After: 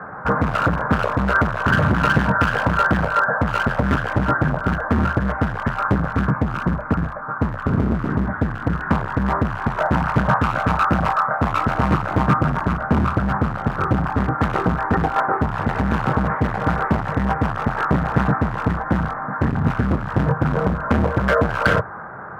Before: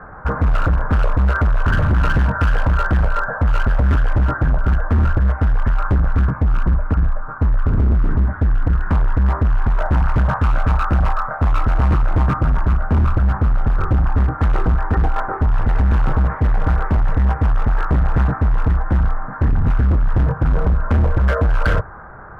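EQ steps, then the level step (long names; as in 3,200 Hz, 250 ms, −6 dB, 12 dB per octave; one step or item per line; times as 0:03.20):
Chebyshev high-pass filter 170 Hz, order 2
parametric band 320 Hz −2.5 dB 1 octave
+5.5 dB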